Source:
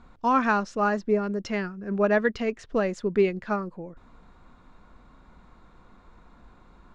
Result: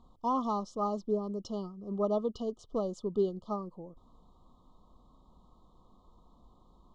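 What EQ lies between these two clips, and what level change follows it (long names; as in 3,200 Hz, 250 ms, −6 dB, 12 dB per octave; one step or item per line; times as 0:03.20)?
linear-phase brick-wall band-stop 1,300–2,900 Hz
−7.5 dB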